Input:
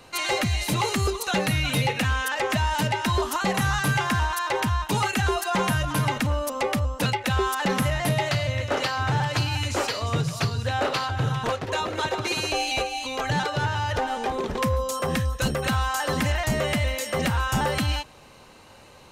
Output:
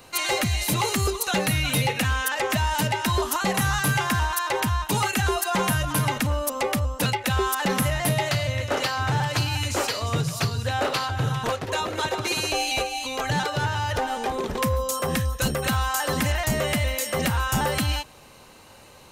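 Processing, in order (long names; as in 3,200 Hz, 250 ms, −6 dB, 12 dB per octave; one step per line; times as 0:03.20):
high-shelf EQ 9,700 Hz +11.5 dB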